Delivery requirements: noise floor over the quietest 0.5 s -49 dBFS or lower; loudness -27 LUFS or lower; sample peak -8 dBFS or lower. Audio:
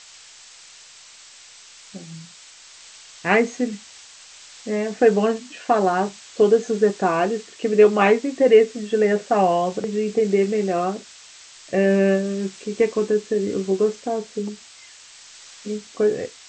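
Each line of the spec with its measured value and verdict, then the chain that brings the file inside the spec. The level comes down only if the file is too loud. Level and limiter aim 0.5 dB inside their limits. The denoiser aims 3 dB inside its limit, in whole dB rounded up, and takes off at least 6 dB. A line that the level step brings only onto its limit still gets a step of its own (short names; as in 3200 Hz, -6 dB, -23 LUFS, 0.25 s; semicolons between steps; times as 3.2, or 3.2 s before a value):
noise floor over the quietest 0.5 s -46 dBFS: fail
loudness -20.5 LUFS: fail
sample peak -3.5 dBFS: fail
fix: gain -7 dB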